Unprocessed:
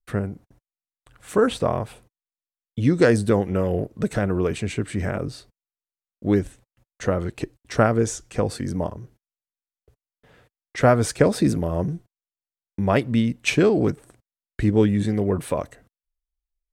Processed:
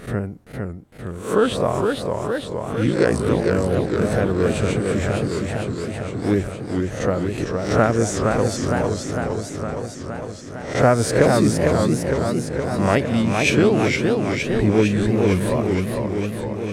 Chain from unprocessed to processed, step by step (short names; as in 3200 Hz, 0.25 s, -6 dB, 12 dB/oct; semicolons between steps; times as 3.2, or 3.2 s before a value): spectral swells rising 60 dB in 0.45 s; 2.86–3.46 ring modulator 29 Hz; warbling echo 0.46 s, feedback 71%, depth 194 cents, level -4 dB